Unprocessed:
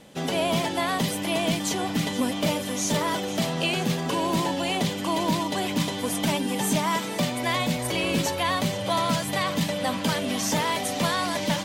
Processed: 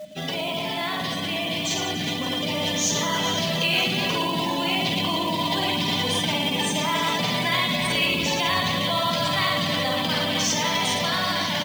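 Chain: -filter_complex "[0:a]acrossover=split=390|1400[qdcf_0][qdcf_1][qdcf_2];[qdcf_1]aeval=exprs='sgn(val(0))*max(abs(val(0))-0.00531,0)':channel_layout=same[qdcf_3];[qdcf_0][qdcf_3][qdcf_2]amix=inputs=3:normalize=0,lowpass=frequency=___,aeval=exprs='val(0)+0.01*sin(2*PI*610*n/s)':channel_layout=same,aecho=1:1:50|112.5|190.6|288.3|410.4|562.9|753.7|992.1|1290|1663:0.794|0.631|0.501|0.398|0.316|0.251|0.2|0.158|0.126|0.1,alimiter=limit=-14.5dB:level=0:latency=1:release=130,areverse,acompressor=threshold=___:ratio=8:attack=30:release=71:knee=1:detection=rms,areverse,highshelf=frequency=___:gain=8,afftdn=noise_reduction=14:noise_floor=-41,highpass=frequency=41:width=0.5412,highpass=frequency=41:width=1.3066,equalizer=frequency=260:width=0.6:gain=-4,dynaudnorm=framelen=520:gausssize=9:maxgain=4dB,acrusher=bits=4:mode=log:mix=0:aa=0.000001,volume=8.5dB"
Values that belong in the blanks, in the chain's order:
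5800, -36dB, 2200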